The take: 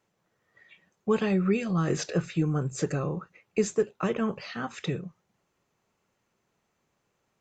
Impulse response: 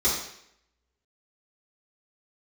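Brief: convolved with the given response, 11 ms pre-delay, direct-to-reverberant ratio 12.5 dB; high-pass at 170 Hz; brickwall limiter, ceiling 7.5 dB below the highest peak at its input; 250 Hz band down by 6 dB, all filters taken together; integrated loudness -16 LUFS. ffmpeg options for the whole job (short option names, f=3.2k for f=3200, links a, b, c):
-filter_complex "[0:a]highpass=170,equalizer=f=250:t=o:g=-6.5,alimiter=limit=-22.5dB:level=0:latency=1,asplit=2[a][b];[1:a]atrim=start_sample=2205,adelay=11[c];[b][c]afir=irnorm=-1:irlink=0,volume=-25dB[d];[a][d]amix=inputs=2:normalize=0,volume=18.5dB"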